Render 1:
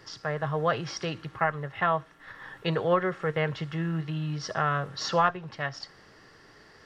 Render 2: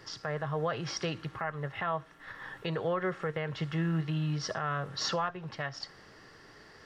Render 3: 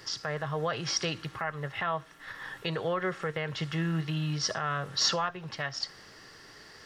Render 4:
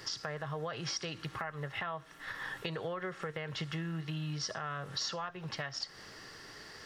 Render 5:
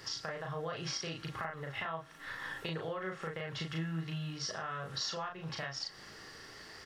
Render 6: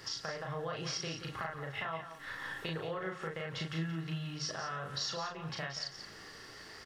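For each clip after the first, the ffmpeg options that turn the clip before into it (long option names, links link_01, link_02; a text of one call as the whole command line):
ffmpeg -i in.wav -af "alimiter=limit=-21.5dB:level=0:latency=1:release=186" out.wav
ffmpeg -i in.wav -af "highshelf=frequency=2700:gain=10" out.wav
ffmpeg -i in.wav -af "acompressor=threshold=-36dB:ratio=6,volume=1dB" out.wav
ffmpeg -i in.wav -filter_complex "[0:a]asplit=2[link_01][link_02];[link_02]adelay=37,volume=-2.5dB[link_03];[link_01][link_03]amix=inputs=2:normalize=0,volume=-2.5dB" out.wav
ffmpeg -i in.wav -af "aecho=1:1:177:0.299" out.wav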